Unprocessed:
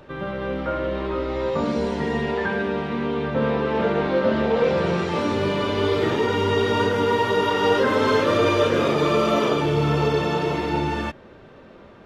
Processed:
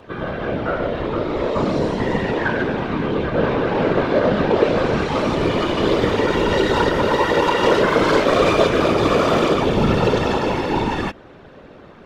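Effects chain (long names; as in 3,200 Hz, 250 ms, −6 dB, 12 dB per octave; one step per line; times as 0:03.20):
phase distortion by the signal itself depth 0.11 ms
random phases in short frames
level +3.5 dB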